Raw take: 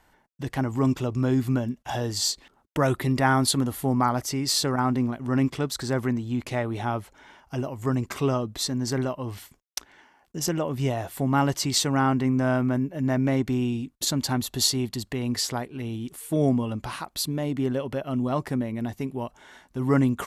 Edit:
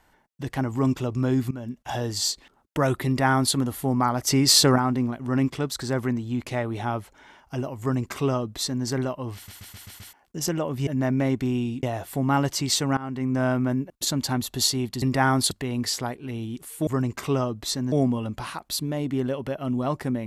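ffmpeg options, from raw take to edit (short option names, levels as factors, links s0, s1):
-filter_complex "[0:a]asplit=18[s0][s1][s2][s3][s4][s5][s6][s7][s8][s9][s10][s11][s12][s13][s14][s15][s16][s17];[s0]atrim=end=1.51,asetpts=PTS-STARTPTS,afade=t=out:st=1.506:d=0.004:c=hsin:silence=0.11885[s18];[s1]atrim=start=1.51:end=4.272,asetpts=PTS-STARTPTS,afade=t=in:d=0.31:silence=0.11885[s19];[s2]atrim=start=4.268:end=4.782,asetpts=PTS-STARTPTS,volume=2.37[s20];[s3]atrim=start=4.778:end=9.482[s21];[s4]atrim=start=9.348:end=9.482[s22];[s5]atrim=start=9.348:end=9.482[s23];[s6]atrim=start=9.348:end=9.482[s24];[s7]atrim=start=9.348:end=9.482[s25];[s8]atrim=start=9.348:end=9.482[s26];[s9]atrim=start=10.128:end=10.872[s27];[s10]atrim=start=12.938:end=13.902[s28];[s11]atrim=start=10.868:end=12.01,asetpts=PTS-STARTPTS,afade=t=out:st=1.138:d=0.004:c=hsin:silence=0.112202[s29];[s12]atrim=start=12.01:end=12.942,asetpts=PTS-STARTPTS,afade=t=in:d=0.43:silence=0.112202[s30];[s13]atrim=start=13.898:end=15.022[s31];[s14]atrim=start=3.058:end=3.552[s32];[s15]atrim=start=15.018:end=16.382[s33];[s16]atrim=start=7.798:end=8.852[s34];[s17]atrim=start=16.378[s35];[s18][s19]concat=n=2:v=0:a=1[s36];[s36][s20]acrossfade=d=0.004:c1=hsin:c2=hsin[s37];[s37][s21]acrossfade=d=0.004:c1=hsin:c2=hsin[s38];[s38][s22]acrossfade=d=0.004:c1=hsin:c2=hsin[s39];[s39][s23]acrossfade=d=0.004:c1=hsin:c2=hsin[s40];[s40][s24]acrossfade=d=0.004:c1=hsin:c2=hsin[s41];[s41][s25]acrossfade=d=0.004:c1=hsin:c2=hsin[s42];[s42][s26]acrossfade=d=0.004:c1=hsin:c2=hsin[s43];[s43][s27]acrossfade=d=0.004:c1=hsin:c2=hsin[s44];[s44][s28]acrossfade=d=0.004:c1=hsin:c2=hsin[s45];[s29][s30]concat=n=2:v=0:a=1[s46];[s45][s46]acrossfade=d=0.004:c1=hsin:c2=hsin[s47];[s47][s31]acrossfade=d=0.004:c1=hsin:c2=hsin[s48];[s48][s32]acrossfade=d=0.004:c1=hsin:c2=hsin[s49];[s49][s33]acrossfade=d=0.004:c1=hsin:c2=hsin[s50];[s50][s34]acrossfade=d=0.004:c1=hsin:c2=hsin[s51];[s51][s35]acrossfade=d=0.004:c1=hsin:c2=hsin"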